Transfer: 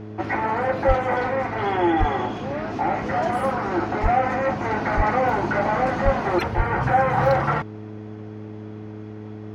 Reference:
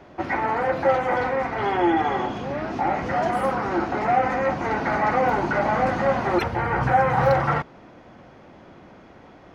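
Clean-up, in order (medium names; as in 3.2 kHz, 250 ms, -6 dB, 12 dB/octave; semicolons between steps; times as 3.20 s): de-hum 106.6 Hz, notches 4; de-plosive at 0.87/1.99/4.02/4.96/6.04/6.56 s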